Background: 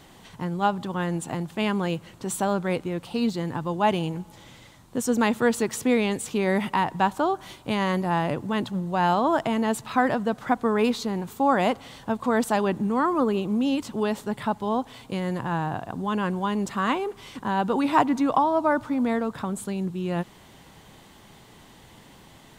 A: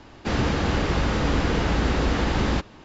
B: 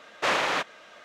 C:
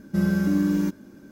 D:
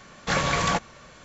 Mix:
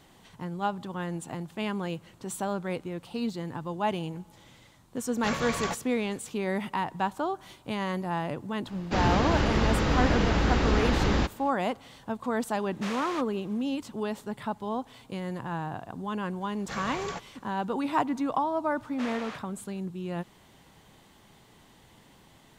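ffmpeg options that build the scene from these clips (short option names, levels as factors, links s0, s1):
-filter_complex "[4:a]asplit=2[s0][s1];[2:a]asplit=2[s2][s3];[0:a]volume=0.473[s4];[s2]aemphasis=mode=production:type=cd[s5];[s0]atrim=end=1.24,asetpts=PTS-STARTPTS,volume=0.376,afade=t=in:d=0.004:c=hsin,afade=t=out:st=1.236:d=0.004:c=hsin,adelay=4960[s6];[1:a]atrim=end=2.84,asetpts=PTS-STARTPTS,volume=0.794,afade=t=in:d=0.004:c=hsin,afade=t=out:st=2.836:d=0.004:c=hsin,adelay=381906S[s7];[s5]atrim=end=1.04,asetpts=PTS-STARTPTS,volume=0.2,afade=t=in:d=0.004:c=hsin,afade=t=out:st=1.036:d=0.004:c=hsin,adelay=12590[s8];[s1]atrim=end=1.24,asetpts=PTS-STARTPTS,volume=0.211,afade=t=in:d=0.004:c=hsin,afade=t=out:st=1.236:d=0.004:c=hsin,adelay=16410[s9];[s3]atrim=end=1.04,asetpts=PTS-STARTPTS,volume=0.178,afade=t=in:d=0.004:c=hsin,afade=t=out:st=1.036:d=0.004:c=hsin,adelay=827316S[s10];[s4][s6][s7][s8][s9][s10]amix=inputs=6:normalize=0"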